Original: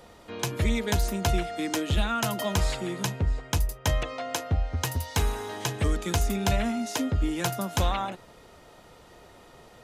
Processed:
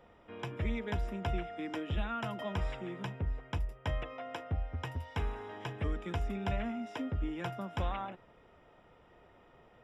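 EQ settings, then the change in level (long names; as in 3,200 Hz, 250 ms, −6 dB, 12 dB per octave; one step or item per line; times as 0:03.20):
Savitzky-Golay smoothing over 25 samples
−9.0 dB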